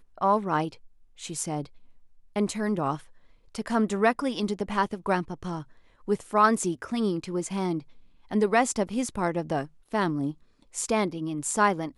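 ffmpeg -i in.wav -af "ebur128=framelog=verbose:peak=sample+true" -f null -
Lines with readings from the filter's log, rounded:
Integrated loudness:
  I:         -27.7 LUFS
  Threshold: -38.2 LUFS
Loudness range:
  LRA:         3.2 LU
  Threshold: -48.3 LUFS
  LRA low:   -29.9 LUFS
  LRA high:  -26.7 LUFS
Sample peak:
  Peak:       -7.9 dBFS
True peak:
  Peak:       -7.9 dBFS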